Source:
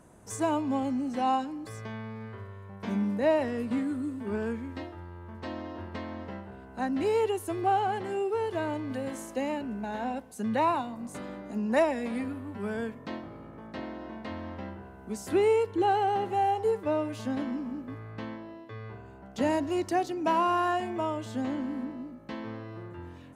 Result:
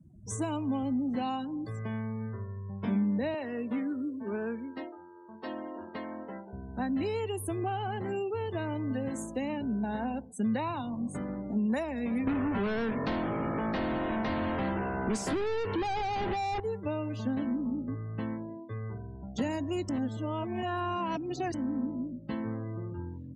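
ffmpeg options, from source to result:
ffmpeg -i in.wav -filter_complex "[0:a]asettb=1/sr,asplit=3[link_01][link_02][link_03];[link_01]atrim=end=3.344[link_04];[link_02]atrim=start=3.34:end=6.53,asetpts=PTS-STARTPTS,afade=type=in:duration=0.004:curve=qsin,afade=type=out:start_time=3.186:duration=0.004:curve=qsin,highpass=340[link_05];[link_03]atrim=start=6.526[link_06];[link_04][link_05]acrossfade=duration=0.004:curve1=hsin:curve2=qsin[link_07];[link_07][link_06]acrossfade=duration=0.004:curve1=qsin:curve2=hsin,asettb=1/sr,asplit=3[link_08][link_09][link_10];[link_08]atrim=end=12.274[link_11];[link_09]atrim=start=12.27:end=16.6,asetpts=PTS-STARTPTS,afade=type=in:duration=0.004:curve=qsin,afade=type=out:start_time=4.326:duration=0.004:curve=qsin,asplit=2[link_12][link_13];[link_13]highpass=frequency=720:poles=1,volume=34dB,asoftclip=type=tanh:threshold=-15.5dB[link_14];[link_12][link_14]amix=inputs=2:normalize=0,lowpass=frequency=1300:poles=1,volume=-6dB[link_15];[link_10]atrim=start=16.596[link_16];[link_11][link_15]acrossfade=duration=0.004:curve1=hsin:curve2=qsin[link_17];[link_17][link_16]acrossfade=duration=0.004:curve1=qsin:curve2=hsin,asplit=3[link_18][link_19][link_20];[link_18]atrim=end=19.892[link_21];[link_19]atrim=start=19.888:end=21.542,asetpts=PTS-STARTPTS,areverse[link_22];[link_20]atrim=start=21.538[link_23];[link_21][link_22]acrossfade=duration=0.004:curve1=hsin:curve2=hsin[link_24];[link_24][link_23]acrossfade=duration=0.004:curve1=hsin:curve2=hsin,afftdn=noise_reduction=32:noise_floor=-45,acrossover=split=180|1800[link_25][link_26][link_27];[link_25]acompressor=threshold=-50dB:ratio=4[link_28];[link_26]acompressor=threshold=-34dB:ratio=4[link_29];[link_27]acompressor=threshold=-45dB:ratio=4[link_30];[link_28][link_29][link_30]amix=inputs=3:normalize=0,bass=frequency=250:gain=11,treble=frequency=4000:gain=7" out.wav

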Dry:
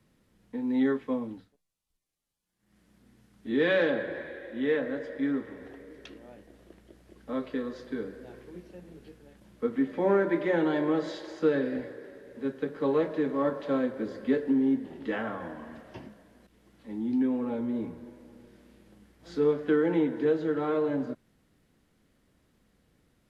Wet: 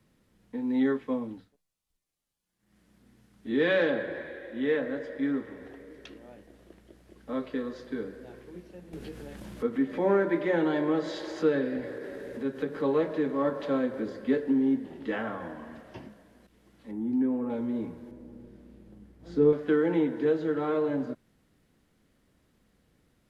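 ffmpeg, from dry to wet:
ffmpeg -i in.wav -filter_complex "[0:a]asettb=1/sr,asplit=3[link_01][link_02][link_03];[link_01]atrim=end=8.934[link_04];[link_02]atrim=start=8.93:end=14.1,asetpts=PTS-STARTPTS,afade=type=in:duration=0.004:curve=qsin,afade=type=out:start_time=5.166:duration=0.004:curve=qsin,acompressor=mode=upward:threshold=-29dB:ratio=2.5:attack=3.2:release=140:knee=2.83:detection=peak[link_05];[link_03]atrim=start=14.096[link_06];[link_04][link_05]acrossfade=duration=0.004:curve1=hsin:curve2=qsin[link_07];[link_07][link_06]acrossfade=duration=0.004:curve1=qsin:curve2=hsin,asettb=1/sr,asplit=3[link_08][link_09][link_10];[link_08]atrim=end=16.914[link_11];[link_09]atrim=start=16.91:end=17.5,asetpts=PTS-STARTPTS,afade=type=in:duration=0.004:curve=qsin,afade=type=out:start_time=0.586:duration=0.004:curve=qsin,equalizer=frequency=3900:width_type=o:width=1.6:gain=-13[link_12];[link_10]atrim=start=17.496[link_13];[link_11][link_12]acrossfade=duration=0.004:curve1=hsin:curve2=qsin[link_14];[link_14][link_13]acrossfade=duration=0.004:curve1=qsin:curve2=hsin,asettb=1/sr,asplit=3[link_15][link_16][link_17];[link_15]atrim=end=18.114[link_18];[link_16]atrim=start=18.11:end=19.53,asetpts=PTS-STARTPTS,afade=type=in:duration=0.004:curve=qsin,afade=type=out:start_time=1.416:duration=0.004:curve=qsin,tiltshelf=frequency=680:gain=7[link_19];[link_17]atrim=start=19.526[link_20];[link_18][link_19]acrossfade=duration=0.004:curve1=hsin:curve2=qsin[link_21];[link_21][link_20]acrossfade=duration=0.004:curve1=qsin:curve2=hsin" out.wav

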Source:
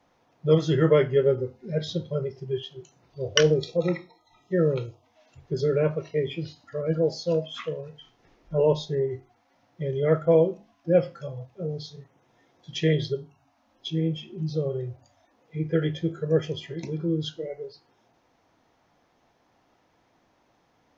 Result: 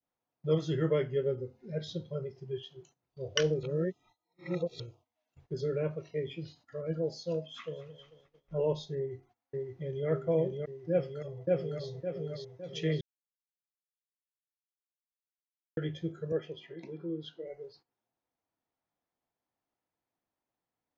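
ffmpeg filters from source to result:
ffmpeg -i in.wav -filter_complex "[0:a]asplit=2[link_01][link_02];[link_02]afade=type=in:start_time=7.45:duration=0.01,afade=type=out:start_time=7.89:duration=0.01,aecho=0:1:220|440|660|880|1100|1320:0.16788|0.100728|0.0604369|0.0362622|0.0217573|0.0130544[link_03];[link_01][link_03]amix=inputs=2:normalize=0,asplit=2[link_04][link_05];[link_05]afade=type=in:start_time=8.96:duration=0.01,afade=type=out:start_time=10.08:duration=0.01,aecho=0:1:570|1140|1710|2280|2850|3420|3990|4560|5130|5700|6270:0.749894|0.487431|0.31683|0.20594|0.133861|0.0870095|0.0565562|0.0367615|0.023895|0.0155317|0.0100956[link_06];[link_04][link_06]amix=inputs=2:normalize=0,asplit=2[link_07][link_08];[link_08]afade=type=in:start_time=10.91:duration=0.01,afade=type=out:start_time=11.88:duration=0.01,aecho=0:1:560|1120|1680|2240|2800|3360:1|0.4|0.16|0.064|0.0256|0.01024[link_09];[link_07][link_09]amix=inputs=2:normalize=0,asettb=1/sr,asplit=3[link_10][link_11][link_12];[link_10]atrim=end=16.324[link_13];[link_11]atrim=start=16.32:end=17.47,asetpts=PTS-STARTPTS,afade=type=in:duration=0.004:curve=qsin,afade=type=out:start_time=1.146:duration=0.004:curve=qsin,highpass=240,lowpass=3100[link_14];[link_12]atrim=start=17.466[link_15];[link_13][link_14]acrossfade=duration=0.004:curve1=hsin:curve2=qsin[link_16];[link_16][link_15]acrossfade=duration=0.004:curve1=qsin:curve2=hsin,asplit=5[link_17][link_18][link_19][link_20][link_21];[link_17]atrim=end=3.632[link_22];[link_18]atrim=start=3.628:end=4.802,asetpts=PTS-STARTPTS,areverse[link_23];[link_19]atrim=start=4.798:end=13.01,asetpts=PTS-STARTPTS,afade=type=out:start_time=8.208:duration=0.004:curve=hsin[link_24];[link_20]atrim=start=13.01:end=15.77,asetpts=PTS-STARTPTS,volume=0[link_25];[link_21]atrim=start=15.77,asetpts=PTS-STARTPTS,afade=type=in:duration=0.004:curve=hsin[link_26];[link_22][link_23]acrossfade=duration=0.004:curve1=hsin:curve2=hsin[link_27];[link_24][link_25][link_26]concat=n=3:v=0:a=1[link_28];[link_27][link_28]acrossfade=duration=0.004:curve1=hsin:curve2=hsin,bandreject=frequency=5500:width=28,agate=range=-17dB:threshold=-51dB:ratio=16:detection=peak,adynamicequalizer=threshold=0.0126:dfrequency=1100:dqfactor=0.74:tfrequency=1100:tqfactor=0.74:attack=5:release=100:ratio=0.375:range=3:mode=cutabove:tftype=bell,volume=-8.5dB" out.wav

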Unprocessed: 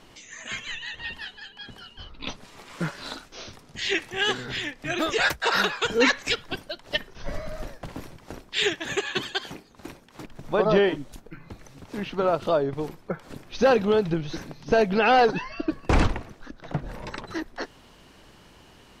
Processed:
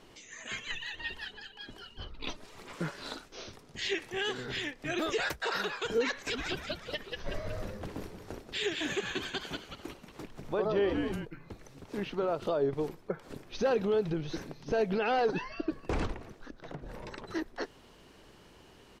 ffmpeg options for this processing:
ffmpeg -i in.wav -filter_complex "[0:a]asettb=1/sr,asplit=3[link_01][link_02][link_03];[link_01]atrim=end=0.704[link_04];[link_02]atrim=start=0.7:end=2.75,asetpts=PTS-STARTPTS,afade=type=in:duration=0.004:curve=qsin,afade=type=out:start_time=2.046:duration=0.004:curve=qsin,aphaser=in_gain=1:out_gain=1:delay=3.3:decay=0.46:speed=1.5:type=sinusoidal[link_05];[link_03]atrim=start=2.746[link_06];[link_04][link_05]acrossfade=duration=0.004:curve1=hsin:curve2=qsin[link_07];[link_07][link_06]acrossfade=duration=0.004:curve1=qsin:curve2=hsin,asplit=3[link_08][link_09][link_10];[link_08]afade=type=out:start_time=6.27:duration=0.02[link_11];[link_09]asplit=7[link_12][link_13][link_14][link_15][link_16][link_17][link_18];[link_13]adelay=184,afreqshift=-110,volume=-8dB[link_19];[link_14]adelay=368,afreqshift=-220,volume=-14.4dB[link_20];[link_15]adelay=552,afreqshift=-330,volume=-20.8dB[link_21];[link_16]adelay=736,afreqshift=-440,volume=-27.1dB[link_22];[link_17]adelay=920,afreqshift=-550,volume=-33.5dB[link_23];[link_18]adelay=1104,afreqshift=-660,volume=-39.9dB[link_24];[link_12][link_19][link_20][link_21][link_22][link_23][link_24]amix=inputs=7:normalize=0,afade=type=in:start_time=6.27:duration=0.02,afade=type=out:start_time=11.24:duration=0.02[link_25];[link_10]afade=type=in:start_time=11.24:duration=0.02[link_26];[link_11][link_25][link_26]amix=inputs=3:normalize=0,asettb=1/sr,asplit=3[link_27][link_28][link_29];[link_27]atrim=end=16.134[link_30];[link_28]atrim=start=16.13:end=17.35,asetpts=PTS-STARTPTS,afade=type=in:duration=0.004:curve=qsin,afade=type=out:start_time=1.216:duration=0.004:curve=qsin,acompressor=threshold=-34dB:ratio=4:attack=3.2:release=140:knee=1:detection=peak[link_31];[link_29]atrim=start=17.346[link_32];[link_30][link_31]acrossfade=duration=0.004:curve1=hsin:curve2=qsin[link_33];[link_33][link_32]acrossfade=duration=0.004:curve1=qsin:curve2=hsin,alimiter=limit=-18.5dB:level=0:latency=1:release=81,equalizer=frequency=410:width=2:gain=5,volume=-5.5dB" out.wav

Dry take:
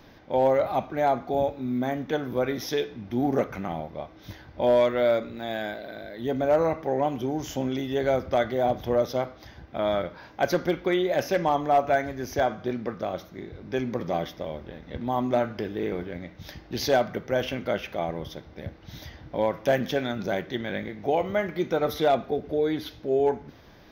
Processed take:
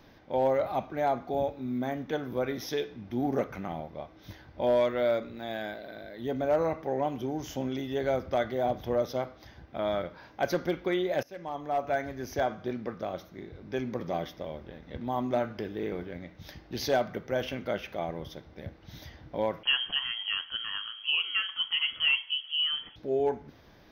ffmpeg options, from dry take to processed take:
ffmpeg -i in.wav -filter_complex "[0:a]asettb=1/sr,asplit=3[link_01][link_02][link_03];[link_01]atrim=end=19.634[link_04];[link_02]atrim=start=19.63:end=22.96,asetpts=PTS-STARTPTS,afade=type=in:duration=0.004:curve=qsin,afade=type=out:start_time=3.326:duration=0.004:curve=qsin,lowpass=frequency=2900:width_type=q:width=0.5098,lowpass=frequency=2900:width_type=q:width=0.6013,lowpass=frequency=2900:width_type=q:width=0.9,lowpass=frequency=2900:width_type=q:width=2.563,afreqshift=-3400[link_05];[link_03]atrim=start=22.956[link_06];[link_04][link_05]acrossfade=duration=0.004:curve1=hsin:curve2=qsin[link_07];[link_07][link_06]acrossfade=duration=0.004:curve1=qsin:curve2=hsin,asplit=2[link_08][link_09];[link_08]atrim=end=11.23,asetpts=PTS-STARTPTS,afade=type=out:start_time=11.226:duration=0.004:curve=hsin:silence=0.0794328[link_10];[link_09]atrim=start=11.23,asetpts=PTS-STARTPTS,afade=type=in:duration=0.89:silence=0.0794328[link_11];[link_10][link_11]concat=n=2:v=0:a=1,bandreject=frequency=7100:width=14,volume=-4.5dB" out.wav

